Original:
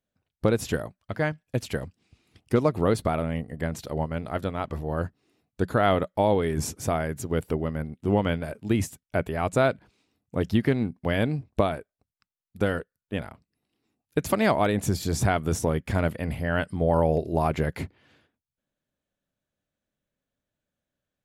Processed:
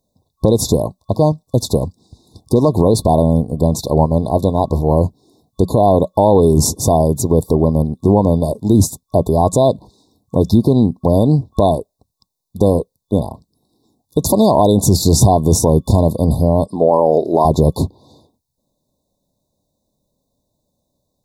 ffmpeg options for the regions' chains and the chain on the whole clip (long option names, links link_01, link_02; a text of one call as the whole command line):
ffmpeg -i in.wav -filter_complex "[0:a]asettb=1/sr,asplit=3[link_01][link_02][link_03];[link_01]atrim=end=16.664[link_04];[link_02]atrim=start=16.66:end=17.45,asetpts=PTS-STARTPTS,afade=type=in:duration=0.004:curve=qsin,afade=type=out:start_time=0.786:duration=0.004:curve=qsin,highpass=300,highshelf=frequency=4900:gain=-9.5[link_05];[link_03]atrim=start=17.446[link_06];[link_04][link_05]acrossfade=duration=0.004:curve1=hsin:curve2=qsin[link_07];[link_07][link_06]acrossfade=duration=0.004:curve1=qsin:curve2=hsin,afftfilt=real='re*(1-between(b*sr/4096,1100,3500))':imag='im*(1-between(b*sr/4096,1100,3500))':win_size=4096:overlap=0.75,alimiter=level_in=17dB:limit=-1dB:release=50:level=0:latency=1,volume=-1dB" out.wav